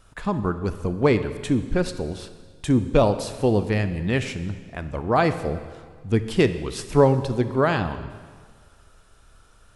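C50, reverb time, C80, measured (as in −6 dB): 11.5 dB, 1.7 s, 13.0 dB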